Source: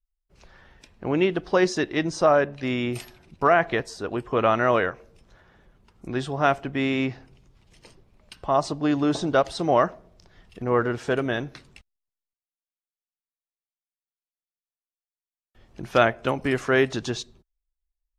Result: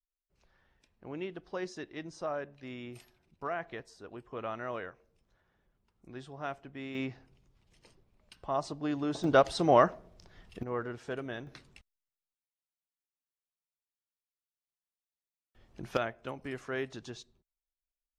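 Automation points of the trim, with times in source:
-17.5 dB
from 6.95 s -10.5 dB
from 9.24 s -2.5 dB
from 10.63 s -13.5 dB
from 11.47 s -7 dB
from 15.97 s -15.5 dB

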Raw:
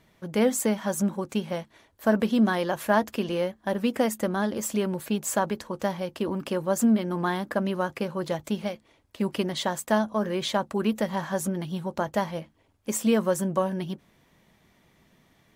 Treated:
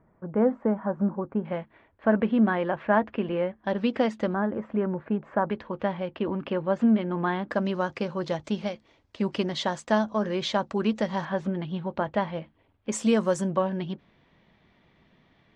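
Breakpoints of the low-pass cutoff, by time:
low-pass 24 dB/octave
1.4 kHz
from 1.45 s 2.5 kHz
from 3.64 s 4.4 kHz
from 4.34 s 1.8 kHz
from 5.50 s 3.1 kHz
from 7.50 s 6.1 kHz
from 11.25 s 3.5 kHz
from 12.92 s 7.7 kHz
from 13.50 s 4.1 kHz

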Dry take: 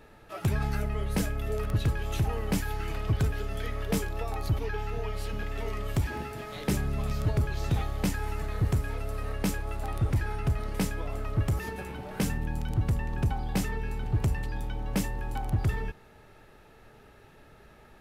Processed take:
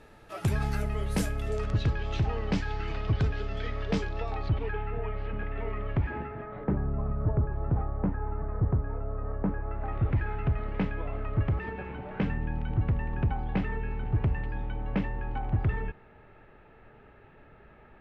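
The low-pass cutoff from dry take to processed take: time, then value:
low-pass 24 dB/octave
1.30 s 12 kHz
1.92 s 5 kHz
4.20 s 5 kHz
4.90 s 2.4 kHz
6.15 s 2.4 kHz
6.77 s 1.3 kHz
9.45 s 1.3 kHz
10.07 s 2.7 kHz

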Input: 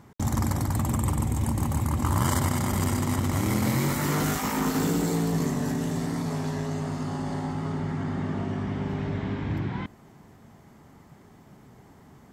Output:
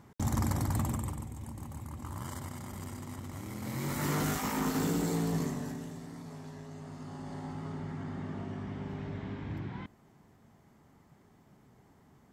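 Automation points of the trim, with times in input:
0.81 s -4.5 dB
1.31 s -16.5 dB
3.55 s -16.5 dB
4.04 s -5.5 dB
5.36 s -5.5 dB
6.00 s -16 dB
6.69 s -16 dB
7.52 s -9.5 dB

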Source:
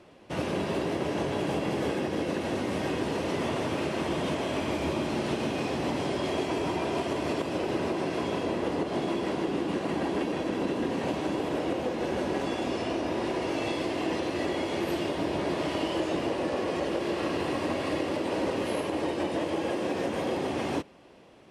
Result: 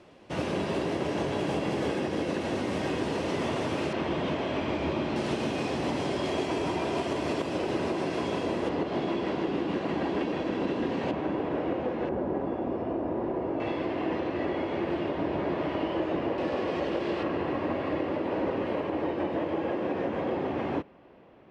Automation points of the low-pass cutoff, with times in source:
9 kHz
from 3.93 s 3.9 kHz
from 5.16 s 9.4 kHz
from 8.69 s 4.3 kHz
from 11.11 s 2.1 kHz
from 12.09 s 1 kHz
from 13.60 s 2.2 kHz
from 16.38 s 3.8 kHz
from 17.23 s 2.1 kHz

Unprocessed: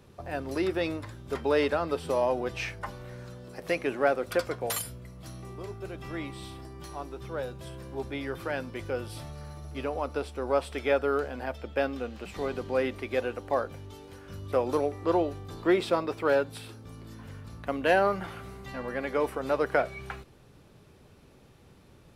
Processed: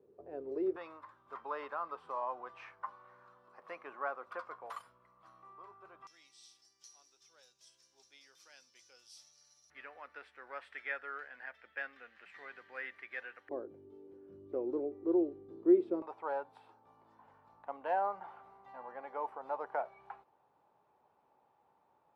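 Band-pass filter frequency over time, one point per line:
band-pass filter, Q 5.2
420 Hz
from 0.76 s 1.1 kHz
from 6.07 s 5.8 kHz
from 9.70 s 1.8 kHz
from 13.49 s 350 Hz
from 16.02 s 870 Hz

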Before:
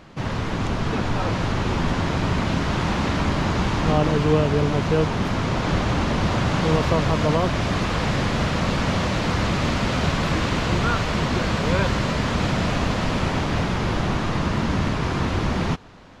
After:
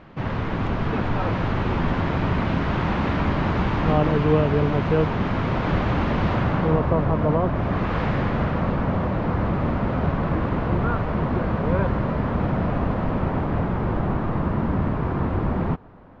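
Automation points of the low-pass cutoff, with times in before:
6.30 s 2.5 kHz
6.84 s 1.2 kHz
7.53 s 1.2 kHz
7.99 s 2.1 kHz
8.88 s 1.2 kHz

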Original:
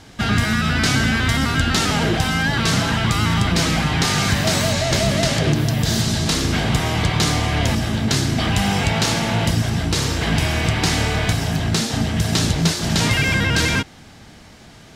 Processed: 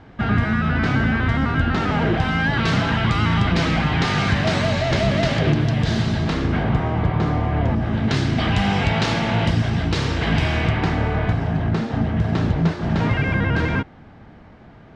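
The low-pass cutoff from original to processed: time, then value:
1.76 s 1.7 kHz
2.66 s 3 kHz
5.88 s 3 kHz
6.96 s 1.2 kHz
7.77 s 1.2 kHz
8.19 s 3.3 kHz
10.55 s 3.3 kHz
10.95 s 1.5 kHz

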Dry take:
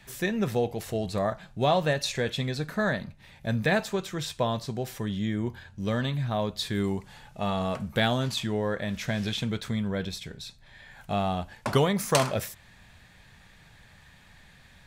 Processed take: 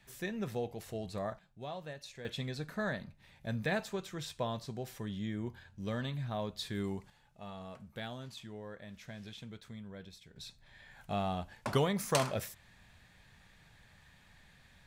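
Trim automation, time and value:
-10.5 dB
from 1.39 s -19.5 dB
from 2.25 s -9 dB
from 7.10 s -18 dB
from 10.36 s -7 dB

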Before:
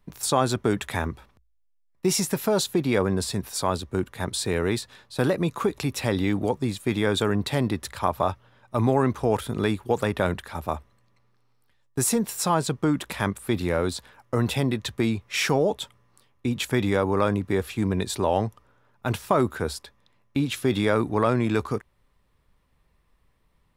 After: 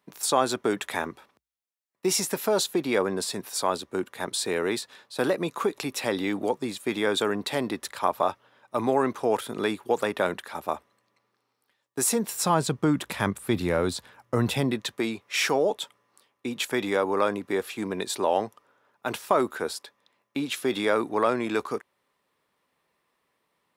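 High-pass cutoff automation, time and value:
12.10 s 290 Hz
12.59 s 99 Hz
14.48 s 99 Hz
14.97 s 320 Hz

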